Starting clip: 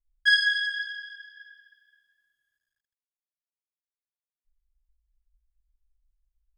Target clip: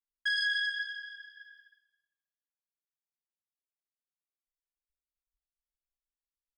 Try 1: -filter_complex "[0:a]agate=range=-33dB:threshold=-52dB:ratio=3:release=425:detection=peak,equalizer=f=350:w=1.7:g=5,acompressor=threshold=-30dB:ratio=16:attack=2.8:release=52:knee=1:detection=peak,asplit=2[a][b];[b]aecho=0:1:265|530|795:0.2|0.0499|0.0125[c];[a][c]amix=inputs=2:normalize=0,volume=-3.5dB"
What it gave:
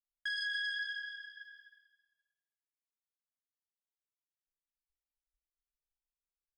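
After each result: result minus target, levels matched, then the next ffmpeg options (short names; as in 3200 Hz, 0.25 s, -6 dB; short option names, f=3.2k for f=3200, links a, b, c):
compressor: peak gain reduction +7 dB; echo-to-direct +8.5 dB
-filter_complex "[0:a]agate=range=-33dB:threshold=-52dB:ratio=3:release=425:detection=peak,equalizer=f=350:w=1.7:g=5,acompressor=threshold=-22.5dB:ratio=16:attack=2.8:release=52:knee=1:detection=peak,asplit=2[a][b];[b]aecho=0:1:265|530|795:0.2|0.0499|0.0125[c];[a][c]amix=inputs=2:normalize=0,volume=-3.5dB"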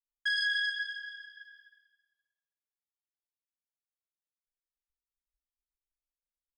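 echo-to-direct +8.5 dB
-filter_complex "[0:a]agate=range=-33dB:threshold=-52dB:ratio=3:release=425:detection=peak,equalizer=f=350:w=1.7:g=5,acompressor=threshold=-22.5dB:ratio=16:attack=2.8:release=52:knee=1:detection=peak,asplit=2[a][b];[b]aecho=0:1:265|530:0.075|0.0187[c];[a][c]amix=inputs=2:normalize=0,volume=-3.5dB"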